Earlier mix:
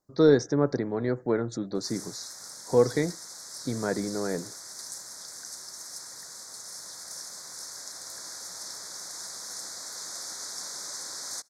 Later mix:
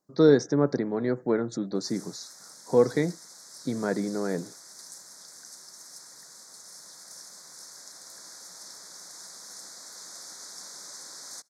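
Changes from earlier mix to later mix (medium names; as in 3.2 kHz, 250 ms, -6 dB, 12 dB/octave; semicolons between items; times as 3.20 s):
background -5.5 dB; master: add resonant low shelf 110 Hz -12.5 dB, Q 1.5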